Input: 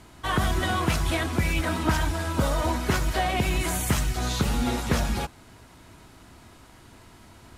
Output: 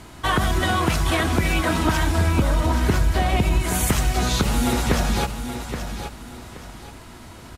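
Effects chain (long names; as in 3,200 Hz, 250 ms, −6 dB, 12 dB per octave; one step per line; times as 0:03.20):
0:02.18–0:03.63: low-shelf EQ 220 Hz +9 dB
downward compressor, threshold −24 dBFS, peak gain reduction 10.5 dB
repeating echo 825 ms, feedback 30%, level −9 dB
level +7.5 dB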